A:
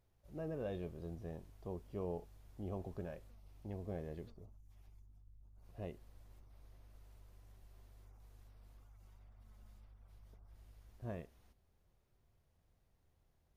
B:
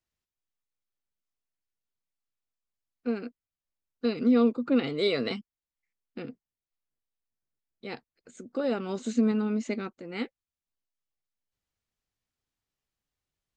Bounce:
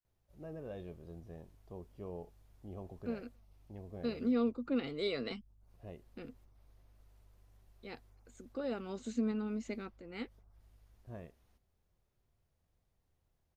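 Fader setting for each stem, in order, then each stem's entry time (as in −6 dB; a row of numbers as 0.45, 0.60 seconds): −3.5, −9.5 decibels; 0.05, 0.00 seconds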